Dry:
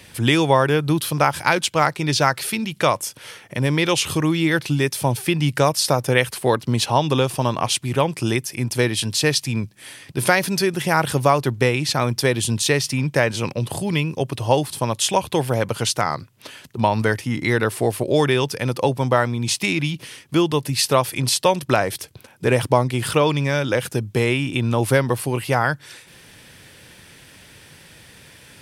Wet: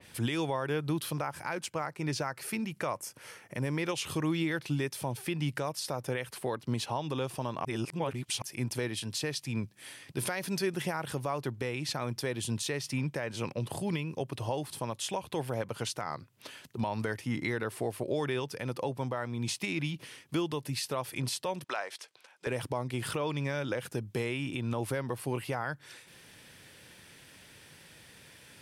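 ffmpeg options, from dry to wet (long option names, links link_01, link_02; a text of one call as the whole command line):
ffmpeg -i in.wav -filter_complex "[0:a]asettb=1/sr,asplit=3[link_01][link_02][link_03];[link_01]atrim=end=1.214[link_04];[link_02]atrim=start=1.21:end=3.92,asetpts=PTS-STARTPTS,afade=type=in:duration=0.004:curve=qsin,afade=type=out:start_time=2.706:duration=0.004:curve=qsin,equalizer=frequency=3500:width=2.4:gain=-8.5[link_05];[link_03]atrim=start=3.916[link_06];[link_04][link_05]acrossfade=duration=0.004:curve1=hsin:curve2=qsin[link_07];[link_07][link_06]acrossfade=duration=0.004:curve1=qsin:curve2=hsin,asettb=1/sr,asplit=3[link_08][link_09][link_10];[link_08]atrim=end=21.644[link_11];[link_09]atrim=start=21.64:end=22.47,asetpts=PTS-STARTPTS,afade=type=in:duration=0.004:curve=qsin,afade=type=out:start_time=0.826:duration=0.004:curve=qsin,highpass=730,lowpass=7300[link_12];[link_10]atrim=start=22.466[link_13];[link_11][link_12]acrossfade=duration=0.004:curve1=hsin:curve2=qsin[link_14];[link_14][link_13]acrossfade=duration=0.004:curve1=qsin:curve2=hsin,asplit=3[link_15][link_16][link_17];[link_15]atrim=end=7.652[link_18];[link_16]atrim=start=7.648:end=8.422,asetpts=PTS-STARTPTS,areverse[link_19];[link_17]atrim=start=8.418[link_20];[link_18][link_19]acrossfade=duration=0.004:curve1=hsin:curve2=hsin[link_21];[link_21][link_20]acrossfade=duration=0.004:curve1=hsin:curve2=hsin,lowshelf=frequency=86:gain=-6.5,alimiter=limit=-13dB:level=0:latency=1:release=216,adynamicequalizer=threshold=0.00891:dfrequency=2700:dqfactor=0.7:tfrequency=2700:tqfactor=0.7:attack=5:release=100:ratio=0.375:range=2:mode=cutabove:tftype=highshelf,volume=-8dB" out.wav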